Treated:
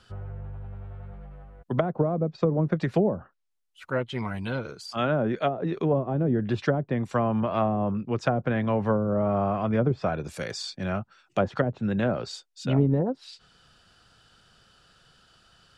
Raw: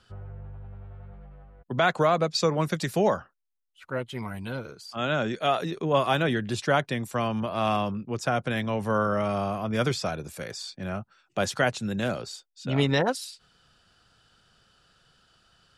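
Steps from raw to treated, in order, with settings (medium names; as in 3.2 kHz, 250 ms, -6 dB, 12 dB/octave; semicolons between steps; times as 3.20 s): low-pass that closes with the level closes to 380 Hz, closed at -20 dBFS; trim +3.5 dB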